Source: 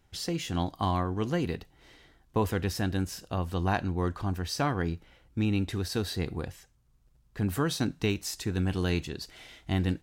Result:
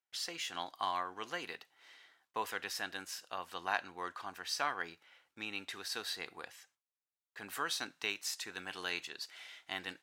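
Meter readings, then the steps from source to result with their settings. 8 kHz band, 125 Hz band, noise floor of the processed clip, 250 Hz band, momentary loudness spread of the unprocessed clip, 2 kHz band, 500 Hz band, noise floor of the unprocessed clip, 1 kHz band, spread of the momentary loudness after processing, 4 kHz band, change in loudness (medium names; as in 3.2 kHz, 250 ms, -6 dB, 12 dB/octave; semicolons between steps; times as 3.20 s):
-3.5 dB, -32.5 dB, under -85 dBFS, -22.0 dB, 10 LU, -1.0 dB, -13.5 dB, -65 dBFS, -4.5 dB, 14 LU, -2.0 dB, -8.5 dB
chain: gate with hold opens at -51 dBFS; high-pass 1.3 kHz 12 dB/octave; tilt EQ -2 dB/octave; trim +2 dB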